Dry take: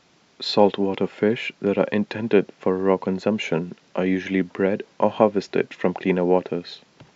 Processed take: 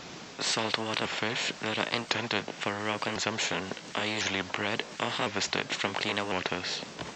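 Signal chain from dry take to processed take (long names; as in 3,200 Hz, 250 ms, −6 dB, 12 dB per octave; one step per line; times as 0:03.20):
pitch shifter swept by a sawtooth +2.5 semitones, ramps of 1,053 ms
every bin compressed towards the loudest bin 4 to 1
level −4.5 dB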